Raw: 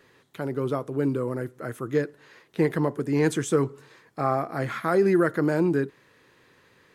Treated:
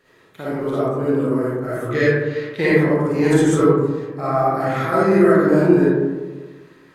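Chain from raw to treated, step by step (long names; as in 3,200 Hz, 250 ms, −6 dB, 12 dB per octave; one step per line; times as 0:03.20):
0:01.89–0:02.67: octave-band graphic EQ 125/250/500/2,000/4,000 Hz +5/−4/+4/+10/+9 dB
in parallel at −2 dB: output level in coarse steps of 11 dB
on the sum: comb and all-pass reverb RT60 1.4 s, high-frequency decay 0.3×, pre-delay 15 ms, DRR −9.5 dB
level −6 dB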